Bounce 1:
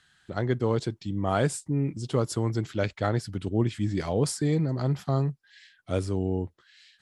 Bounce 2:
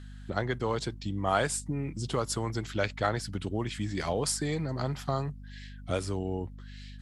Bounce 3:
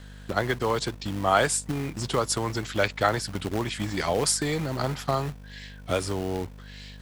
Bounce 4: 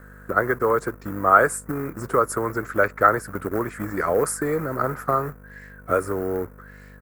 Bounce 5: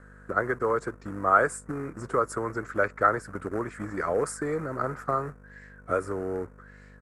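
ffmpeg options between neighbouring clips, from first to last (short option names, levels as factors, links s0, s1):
-filter_complex "[0:a]acrossover=split=650[s0][s1];[s0]acompressor=threshold=0.0224:ratio=6[s2];[s2][s1]amix=inputs=2:normalize=0,aeval=exprs='val(0)+0.00501*(sin(2*PI*50*n/s)+sin(2*PI*2*50*n/s)/2+sin(2*PI*3*50*n/s)/3+sin(2*PI*4*50*n/s)/4+sin(2*PI*5*50*n/s)/5)':c=same,volume=1.33"
-filter_complex "[0:a]lowshelf=f=280:g=-6,acrossover=split=440|4700[s0][s1][s2];[s0]acrusher=bits=2:mode=log:mix=0:aa=0.000001[s3];[s3][s1][s2]amix=inputs=3:normalize=0,volume=2.11"
-af "firequalizer=gain_entry='entry(120,0);entry(470,10);entry(810,0);entry(1300,14);entry(3200,-22);entry(7100,-5);entry(14000,13)':delay=0.05:min_phase=1,volume=0.75"
-af "lowpass=f=8800:w=0.5412,lowpass=f=8800:w=1.3066,volume=0.531"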